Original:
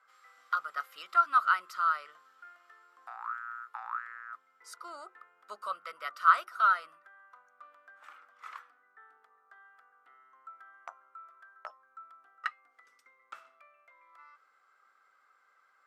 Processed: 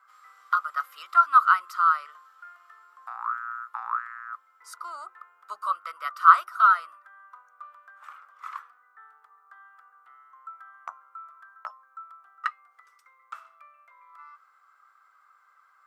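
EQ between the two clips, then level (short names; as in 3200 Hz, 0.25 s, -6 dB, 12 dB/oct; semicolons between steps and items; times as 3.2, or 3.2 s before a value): HPF 820 Hz 6 dB/oct; bell 1100 Hz +12 dB 0.8 oct; high shelf 8100 Hz +8 dB; 0.0 dB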